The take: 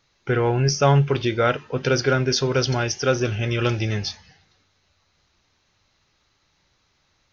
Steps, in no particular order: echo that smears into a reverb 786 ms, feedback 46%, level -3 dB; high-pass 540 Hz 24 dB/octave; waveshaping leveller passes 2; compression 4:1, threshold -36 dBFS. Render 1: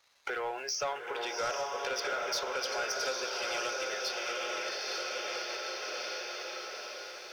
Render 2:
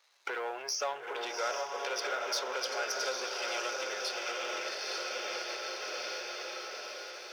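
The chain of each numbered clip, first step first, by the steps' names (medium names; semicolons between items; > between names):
echo that smears into a reverb > compression > high-pass > waveshaping leveller; echo that smears into a reverb > compression > waveshaping leveller > high-pass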